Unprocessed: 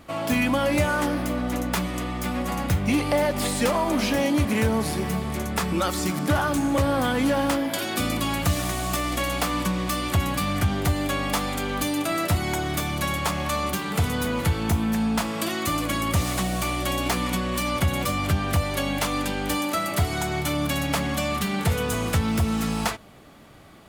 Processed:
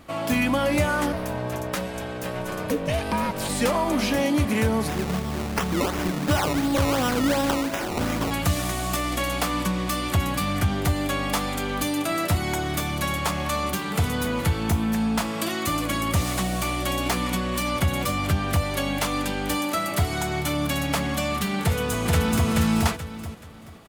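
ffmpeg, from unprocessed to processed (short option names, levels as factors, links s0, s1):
-filter_complex "[0:a]asplit=3[s0][s1][s2];[s0]afade=t=out:st=1.12:d=0.02[s3];[s1]aeval=exprs='val(0)*sin(2*PI*370*n/s)':c=same,afade=t=in:st=1.12:d=0.02,afade=t=out:st=3.48:d=0.02[s4];[s2]afade=t=in:st=3.48:d=0.02[s5];[s3][s4][s5]amix=inputs=3:normalize=0,asplit=3[s6][s7][s8];[s6]afade=t=out:st=4.87:d=0.02[s9];[s7]acrusher=samples=19:mix=1:aa=0.000001:lfo=1:lforange=19:lforate=2.8,afade=t=in:st=4.87:d=0.02,afade=t=out:st=8.3:d=0.02[s10];[s8]afade=t=in:st=8.3:d=0.02[s11];[s9][s10][s11]amix=inputs=3:normalize=0,asplit=2[s12][s13];[s13]afade=t=in:st=21.62:d=0.01,afade=t=out:st=22.48:d=0.01,aecho=0:1:430|860|1290|1720:0.841395|0.252419|0.0757256|0.0227177[s14];[s12][s14]amix=inputs=2:normalize=0"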